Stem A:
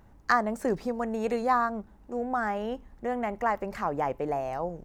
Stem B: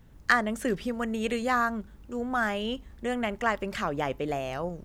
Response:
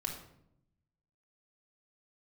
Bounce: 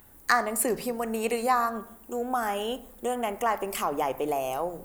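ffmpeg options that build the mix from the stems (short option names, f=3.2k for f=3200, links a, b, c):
-filter_complex "[0:a]highshelf=f=2k:g=8.5,volume=-3.5dB,asplit=3[a][b][c];[b]volume=-7dB[d];[1:a]highpass=280,aexciter=amount=10.3:drive=4.6:freq=7.9k,volume=0.5dB[e];[c]apad=whole_len=213737[f];[e][f]sidechaincompress=threshold=-34dB:ratio=8:attack=16:release=190[g];[2:a]atrim=start_sample=2205[h];[d][h]afir=irnorm=-1:irlink=0[i];[a][g][i]amix=inputs=3:normalize=0,lowshelf=f=280:g=-5"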